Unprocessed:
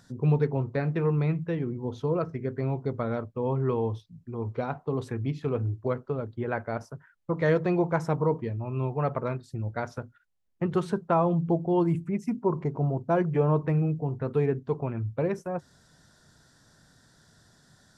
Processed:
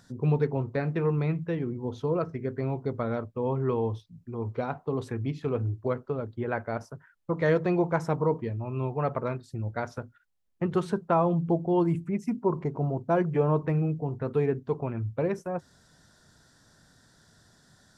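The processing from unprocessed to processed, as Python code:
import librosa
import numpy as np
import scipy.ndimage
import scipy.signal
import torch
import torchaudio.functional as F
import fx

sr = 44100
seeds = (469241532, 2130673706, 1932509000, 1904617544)

y = fx.peak_eq(x, sr, hz=140.0, db=-2.5, octaves=0.34)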